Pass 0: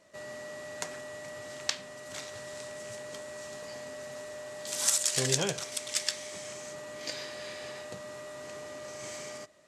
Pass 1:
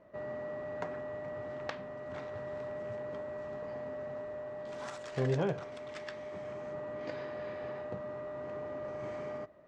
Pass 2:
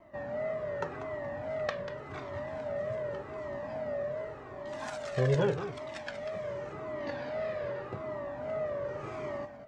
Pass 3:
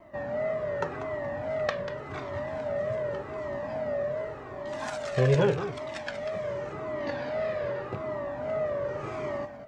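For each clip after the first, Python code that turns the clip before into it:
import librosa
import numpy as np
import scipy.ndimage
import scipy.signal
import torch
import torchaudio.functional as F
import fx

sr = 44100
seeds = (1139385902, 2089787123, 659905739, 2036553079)

y1 = scipy.signal.sosfilt(scipy.signal.butter(2, 1200.0, 'lowpass', fs=sr, output='sos'), x)
y1 = fx.low_shelf(y1, sr, hz=71.0, db=6.0)
y1 = fx.rider(y1, sr, range_db=4, speed_s=2.0)
y1 = y1 * librosa.db_to_amplitude(1.0)
y2 = fx.wow_flutter(y1, sr, seeds[0], rate_hz=2.1, depth_cents=88.0)
y2 = y2 + 10.0 ** (-9.5 / 20.0) * np.pad(y2, (int(191 * sr / 1000.0), 0))[:len(y2)]
y2 = fx.comb_cascade(y2, sr, direction='falling', hz=0.86)
y2 = y2 * librosa.db_to_amplitude(8.0)
y3 = fx.rattle_buzz(y2, sr, strikes_db=-34.0, level_db=-39.0)
y3 = y3 * librosa.db_to_amplitude(4.5)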